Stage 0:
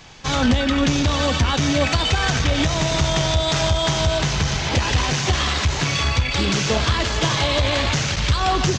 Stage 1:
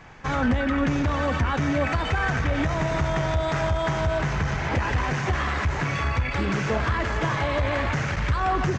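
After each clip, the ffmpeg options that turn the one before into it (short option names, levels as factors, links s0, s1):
-filter_complex "[0:a]highshelf=f=2600:t=q:w=1.5:g=-11.5,asplit=2[s0][s1];[s1]alimiter=limit=0.126:level=0:latency=1,volume=1.12[s2];[s0][s2]amix=inputs=2:normalize=0,volume=0.398"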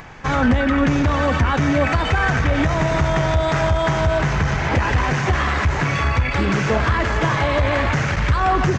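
-af "acompressor=mode=upward:threshold=0.00794:ratio=2.5,volume=2"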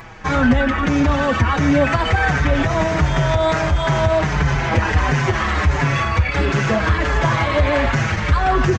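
-filter_complex "[0:a]asplit=2[s0][s1];[s1]adelay=5.6,afreqshift=-1.5[s2];[s0][s2]amix=inputs=2:normalize=1,volume=1.58"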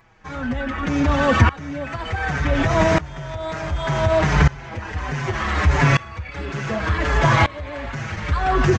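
-af "aeval=exprs='val(0)*pow(10,-22*if(lt(mod(-0.67*n/s,1),2*abs(-0.67)/1000),1-mod(-0.67*n/s,1)/(2*abs(-0.67)/1000),(mod(-0.67*n/s,1)-2*abs(-0.67)/1000)/(1-2*abs(-0.67)/1000))/20)':c=same,volume=1.58"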